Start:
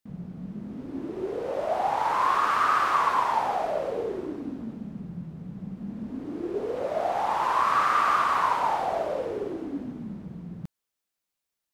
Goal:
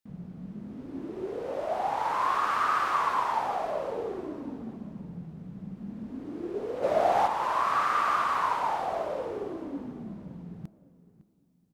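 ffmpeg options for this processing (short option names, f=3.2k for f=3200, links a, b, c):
-filter_complex "[0:a]asplit=3[a][b][c];[a]afade=t=out:st=6.82:d=0.02[d];[b]acontrast=79,afade=t=in:st=6.82:d=0.02,afade=t=out:st=7.26:d=0.02[e];[c]afade=t=in:st=7.26:d=0.02[f];[d][e][f]amix=inputs=3:normalize=0,asplit=2[g][h];[h]adelay=557,lowpass=f=2k:p=1,volume=-17dB,asplit=2[i][j];[j]adelay=557,lowpass=f=2k:p=1,volume=0.34,asplit=2[k][l];[l]adelay=557,lowpass=f=2k:p=1,volume=0.34[m];[i][k][m]amix=inputs=3:normalize=0[n];[g][n]amix=inputs=2:normalize=0,volume=-3.5dB"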